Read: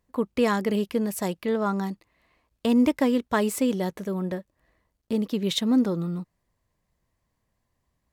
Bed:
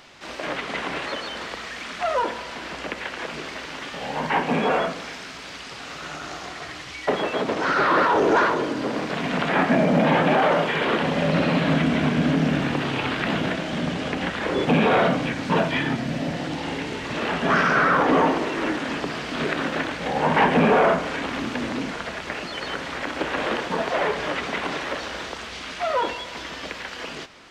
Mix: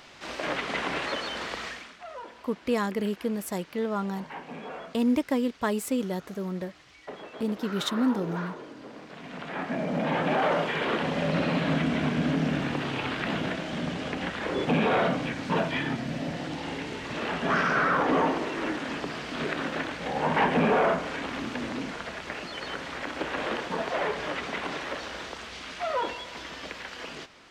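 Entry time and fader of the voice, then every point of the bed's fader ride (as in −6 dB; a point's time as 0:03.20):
2.30 s, −4.0 dB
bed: 0:01.68 −1.5 dB
0:01.98 −18 dB
0:09.05 −18 dB
0:10.46 −5.5 dB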